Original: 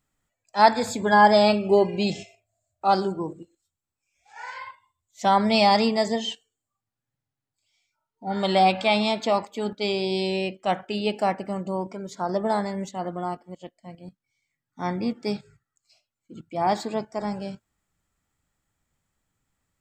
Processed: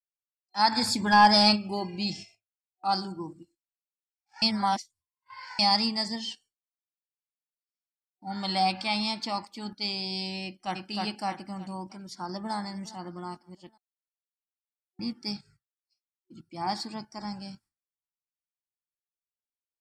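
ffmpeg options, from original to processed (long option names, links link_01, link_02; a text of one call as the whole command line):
ffmpeg -i in.wav -filter_complex "[0:a]asplit=3[link_01][link_02][link_03];[link_01]afade=type=out:start_time=0.71:duration=0.02[link_04];[link_02]acontrast=60,afade=type=in:start_time=0.71:duration=0.02,afade=type=out:start_time=1.55:duration=0.02[link_05];[link_03]afade=type=in:start_time=1.55:duration=0.02[link_06];[link_04][link_05][link_06]amix=inputs=3:normalize=0,asplit=2[link_07][link_08];[link_08]afade=type=in:start_time=10.44:duration=0.01,afade=type=out:start_time=10.84:duration=0.01,aecho=0:1:310|620|930|1240|1550:0.841395|0.336558|0.134623|0.0538493|0.0215397[link_09];[link_07][link_09]amix=inputs=2:normalize=0,asplit=2[link_10][link_11];[link_11]afade=type=in:start_time=12:duration=0.01,afade=type=out:start_time=12.54:duration=0.01,aecho=0:1:410|820|1230:0.149624|0.0598494|0.0239398[link_12];[link_10][link_12]amix=inputs=2:normalize=0,asplit=5[link_13][link_14][link_15][link_16][link_17];[link_13]atrim=end=4.422[link_18];[link_14]atrim=start=4.418:end=5.592,asetpts=PTS-STARTPTS,areverse[link_19];[link_15]atrim=start=5.588:end=13.78,asetpts=PTS-STARTPTS,afade=type=out:start_time=8.188:duration=0.004:curve=hsin[link_20];[link_16]atrim=start=13.78:end=14.99,asetpts=PTS-STARTPTS,volume=0[link_21];[link_17]atrim=start=14.99,asetpts=PTS-STARTPTS,afade=type=in:duration=0.004:curve=hsin[link_22];[link_18][link_19]acrossfade=duration=0.004:curve1=hsin:curve2=hsin[link_23];[link_20][link_21][link_22]concat=n=3:v=0:a=1[link_24];[link_23][link_24]acrossfade=duration=0.004:curve1=hsin:curve2=hsin,agate=range=-33dB:threshold=-47dB:ratio=3:detection=peak,superequalizer=7b=0.251:8b=0.316:14b=3.55:16b=3.55,volume=-6.5dB" out.wav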